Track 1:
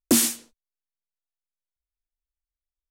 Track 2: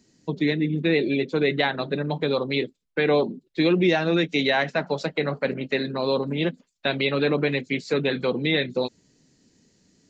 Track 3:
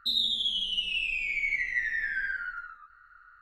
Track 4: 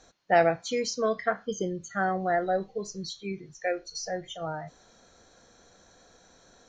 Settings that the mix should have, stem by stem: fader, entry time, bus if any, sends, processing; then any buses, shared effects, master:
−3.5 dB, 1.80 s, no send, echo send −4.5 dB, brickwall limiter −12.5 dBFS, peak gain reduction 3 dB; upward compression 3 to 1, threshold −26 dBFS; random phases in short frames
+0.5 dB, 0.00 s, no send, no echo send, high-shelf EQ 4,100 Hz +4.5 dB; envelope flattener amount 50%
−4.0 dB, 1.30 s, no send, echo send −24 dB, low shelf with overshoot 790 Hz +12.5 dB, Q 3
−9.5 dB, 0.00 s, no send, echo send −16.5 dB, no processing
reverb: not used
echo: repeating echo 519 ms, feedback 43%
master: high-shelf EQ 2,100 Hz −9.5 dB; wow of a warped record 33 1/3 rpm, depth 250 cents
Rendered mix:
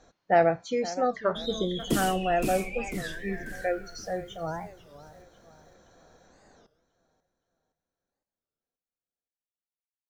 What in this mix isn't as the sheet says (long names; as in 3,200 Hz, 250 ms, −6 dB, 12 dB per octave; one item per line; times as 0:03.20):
stem 2: muted
stem 4 −9.5 dB → +1.5 dB